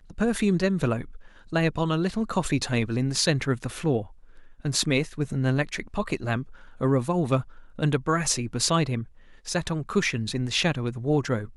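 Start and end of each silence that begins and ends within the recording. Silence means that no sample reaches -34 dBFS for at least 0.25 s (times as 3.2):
1.16–1.53
4.04–4.65
6.43–6.81
7.42–7.79
9.03–9.47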